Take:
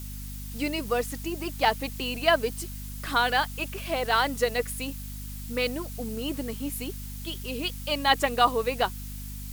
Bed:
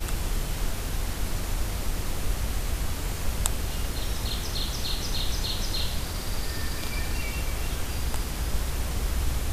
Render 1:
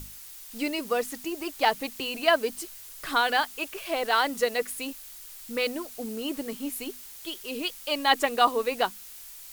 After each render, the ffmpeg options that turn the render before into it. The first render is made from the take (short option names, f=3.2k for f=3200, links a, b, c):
-af "bandreject=f=50:t=h:w=6,bandreject=f=100:t=h:w=6,bandreject=f=150:t=h:w=6,bandreject=f=200:t=h:w=6,bandreject=f=250:t=h:w=6"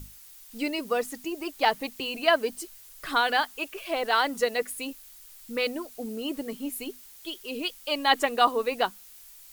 -af "afftdn=nr=6:nf=-45"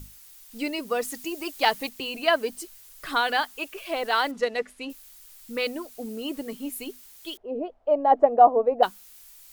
-filter_complex "[0:a]asettb=1/sr,asplit=3[a][b][c];[a]atrim=end=1.024[d];[b]atrim=start=1.02:end=1.89,asetpts=PTS-STARTPTS,afade=t=in:d=0.004:c=qsin,afade=t=out:st=0.866:d=0.004:c=qsin,highshelf=f=2.2k:g=5.5[e];[c]atrim=start=1.886[f];[d][e]acrossfade=d=0.004:c1=hsin:c2=qsin[g];[g][f]acrossfade=d=0.004:c1=qsin:c2=hsin,asettb=1/sr,asplit=3[h][i][j];[h]atrim=end=4.314[k];[i]atrim=start=4.31:end=4.9,asetpts=PTS-STARTPTS,afade=t=in:d=0.004:c=qsin,afade=t=out:st=0.586:d=0.004:c=qsin,adynamicsmooth=sensitivity=2.5:basefreq=3.9k[l];[j]atrim=start=4.896[m];[k][l]acrossfade=d=0.004:c1=hsin:c2=qsin[n];[n][m]acrossfade=d=0.004:c1=qsin:c2=hsin,asettb=1/sr,asplit=3[o][p][q];[o]atrim=end=7.374[r];[p]atrim=start=7.37:end=8.83,asetpts=PTS-STARTPTS,afade=t=in:d=0.004:c=qsin,afade=t=out:st=1.456:d=0.004:c=qsin,lowpass=f=670:t=q:w=4.8[s];[q]atrim=start=8.826[t];[r][s]acrossfade=d=0.004:c1=hsin:c2=qsin[u];[u][t]acrossfade=d=0.004:c1=qsin:c2=hsin"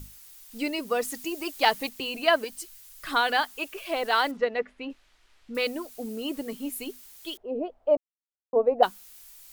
-filter_complex "[0:a]asettb=1/sr,asplit=3[a][b][c];[a]atrim=end=2.444[d];[b]atrim=start=2.44:end=3.07,asetpts=PTS-STARTPTS,afade=t=in:d=0.004:c=qsin,afade=t=out:st=0.626:d=0.004:c=qsin,equalizer=f=360:w=0.62:g=-10.5[e];[c]atrim=start=3.066[f];[d][e]acrossfade=d=0.004:c1=hsin:c2=qsin[g];[g][f]acrossfade=d=0.004:c1=qsin:c2=hsin,asettb=1/sr,asplit=3[h][i][j];[h]atrim=end=4.374[k];[i]atrim=start=4.37:end=5.55,asetpts=PTS-STARTPTS,afade=t=in:d=0.004:c=qsin,afade=t=out:st=1.176:d=0.004:c=qsin,lowpass=2.7k[l];[j]atrim=start=5.546[m];[k][l]acrossfade=d=0.004:c1=hsin:c2=qsin[n];[n][m]acrossfade=d=0.004:c1=qsin:c2=hsin,asplit=3[o][p][q];[o]atrim=end=7.97,asetpts=PTS-STARTPTS,afade=t=out:st=7.966:d=0.004:c=hsin[r];[p]atrim=start=7.97:end=8.53,asetpts=PTS-STARTPTS,volume=0[s];[q]atrim=start=8.53,asetpts=PTS-STARTPTS,afade=t=in:d=0.004:c=hsin[t];[r][s][t]concat=n=3:v=0:a=1"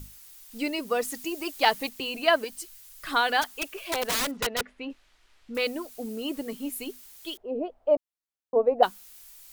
-filter_complex "[0:a]asplit=3[a][b][c];[a]afade=t=out:st=3.41:d=0.02[d];[b]aeval=exprs='(mod(11.9*val(0)+1,2)-1)/11.9':c=same,afade=t=in:st=3.41:d=0.02,afade=t=out:st=5.56:d=0.02[e];[c]afade=t=in:st=5.56:d=0.02[f];[d][e][f]amix=inputs=3:normalize=0"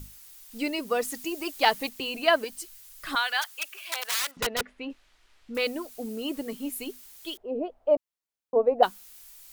-filter_complex "[0:a]asettb=1/sr,asplit=3[a][b][c];[a]atrim=end=3.154[d];[b]atrim=start=3.15:end=4.37,asetpts=PTS-STARTPTS,afade=t=in:d=0.004:c=qsin,afade=t=out:st=1.216:d=0.004:c=qsin,highpass=1.2k[e];[c]atrim=start=4.366[f];[d][e]acrossfade=d=0.004:c1=hsin:c2=qsin[g];[g][f]acrossfade=d=0.004:c1=qsin:c2=hsin"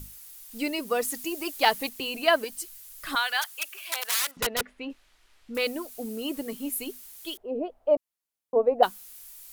-af "equalizer=f=12k:w=0.96:g=6"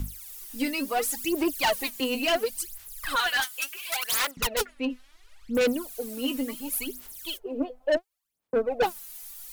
-filter_complex "[0:a]aphaser=in_gain=1:out_gain=1:delay=4:decay=0.76:speed=0.71:type=sinusoidal,acrossover=split=210[a][b];[b]asoftclip=type=tanh:threshold=-19.5dB[c];[a][c]amix=inputs=2:normalize=0"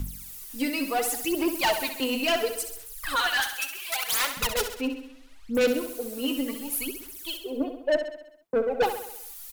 -af "aecho=1:1:66|132|198|264|330|396|462:0.355|0.199|0.111|0.0623|0.0349|0.0195|0.0109"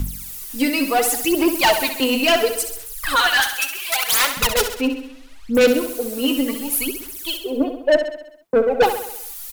-af "volume=8.5dB"